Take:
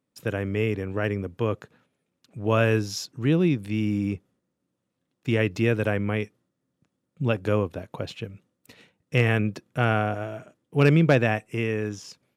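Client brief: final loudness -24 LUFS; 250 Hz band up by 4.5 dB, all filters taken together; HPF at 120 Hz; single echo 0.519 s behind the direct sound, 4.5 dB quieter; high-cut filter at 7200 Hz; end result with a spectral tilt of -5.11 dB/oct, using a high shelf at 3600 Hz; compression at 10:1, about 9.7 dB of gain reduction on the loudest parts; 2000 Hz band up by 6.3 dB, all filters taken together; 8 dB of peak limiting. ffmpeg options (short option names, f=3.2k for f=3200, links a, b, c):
-af "highpass=120,lowpass=7.2k,equalizer=f=250:t=o:g=6.5,equalizer=f=2k:t=o:g=6.5,highshelf=f=3.6k:g=5.5,acompressor=threshold=-21dB:ratio=10,alimiter=limit=-17dB:level=0:latency=1,aecho=1:1:519:0.596,volume=5dB"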